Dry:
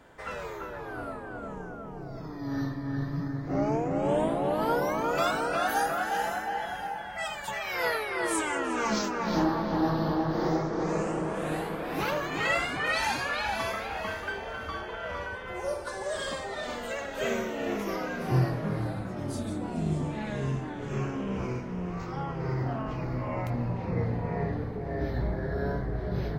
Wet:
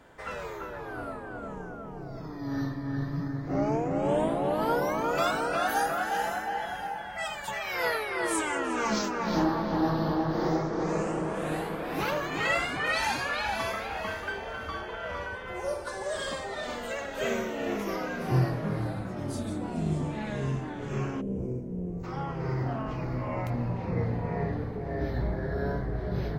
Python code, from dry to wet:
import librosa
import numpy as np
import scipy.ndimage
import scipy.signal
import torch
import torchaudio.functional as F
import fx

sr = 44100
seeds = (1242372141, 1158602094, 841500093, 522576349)

y = fx.curve_eq(x, sr, hz=(480.0, 1200.0, 4900.0, 8800.0), db=(0, -25, -22, -5), at=(21.2, 22.03), fade=0.02)